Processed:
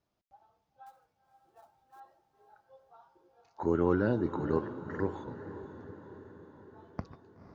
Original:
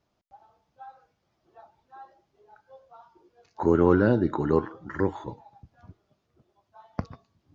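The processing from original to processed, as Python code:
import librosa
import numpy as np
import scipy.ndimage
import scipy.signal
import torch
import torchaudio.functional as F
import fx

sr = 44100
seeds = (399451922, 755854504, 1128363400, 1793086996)

y = fx.quant_float(x, sr, bits=2, at=(0.86, 2.0))
y = fx.echo_diffused(y, sr, ms=502, feedback_pct=60, wet_db=-12.0)
y = F.gain(torch.from_numpy(y), -7.5).numpy()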